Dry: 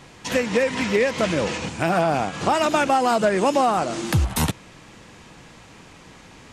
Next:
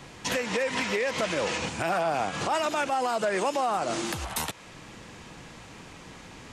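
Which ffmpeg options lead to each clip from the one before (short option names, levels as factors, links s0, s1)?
-filter_complex "[0:a]acrossover=split=430|3300[s0][s1][s2];[s0]acompressor=threshold=0.02:ratio=6[s3];[s3][s1][s2]amix=inputs=3:normalize=0,alimiter=limit=0.126:level=0:latency=1:release=126"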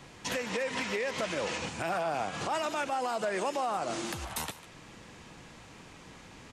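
-af "aecho=1:1:148:0.15,volume=0.562"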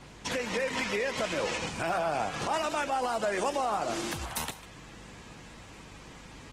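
-af "aeval=exprs='val(0)+0.00141*(sin(2*PI*50*n/s)+sin(2*PI*2*50*n/s)/2+sin(2*PI*3*50*n/s)/3+sin(2*PI*4*50*n/s)/4+sin(2*PI*5*50*n/s)/5)':c=same,bandreject=f=193.2:t=h:w=4,bandreject=f=386.4:t=h:w=4,bandreject=f=579.6:t=h:w=4,bandreject=f=772.8:t=h:w=4,volume=1.26" -ar 48000 -c:a libopus -b:a 16k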